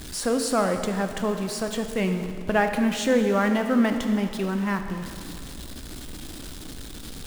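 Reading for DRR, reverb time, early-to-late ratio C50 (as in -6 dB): 6.0 dB, 2.3 s, 7.0 dB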